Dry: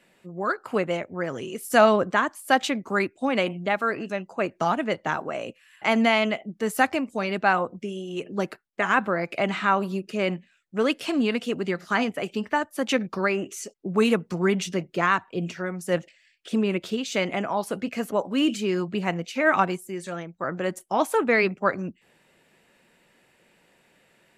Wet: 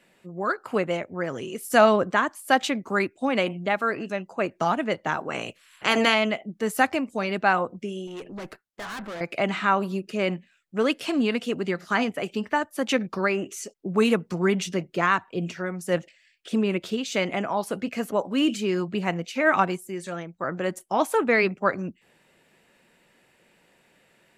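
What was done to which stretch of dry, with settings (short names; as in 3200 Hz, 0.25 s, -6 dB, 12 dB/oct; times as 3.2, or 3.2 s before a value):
5.29–6.13 spectral limiter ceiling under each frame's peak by 17 dB
8.07–9.21 tube stage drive 33 dB, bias 0.3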